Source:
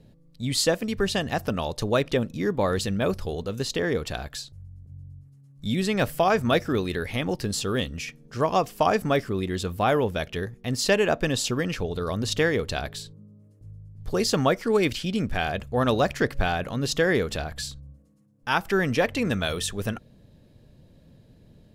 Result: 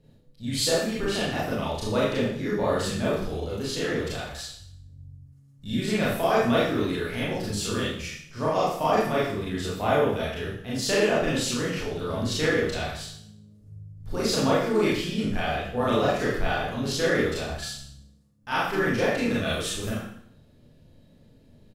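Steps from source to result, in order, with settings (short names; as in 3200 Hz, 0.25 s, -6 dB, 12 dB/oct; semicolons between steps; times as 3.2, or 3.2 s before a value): harmoniser -4 st -10 dB; Schroeder reverb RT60 0.64 s, combs from 26 ms, DRR -7.5 dB; gain -9 dB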